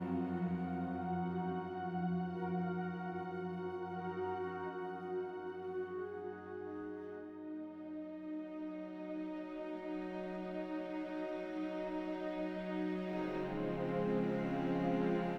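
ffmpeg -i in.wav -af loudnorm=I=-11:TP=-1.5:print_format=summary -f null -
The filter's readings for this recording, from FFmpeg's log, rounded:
Input Integrated:    -40.1 LUFS
Input True Peak:     -23.7 dBTP
Input LRA:             7.2 LU
Input Threshold:     -50.1 LUFS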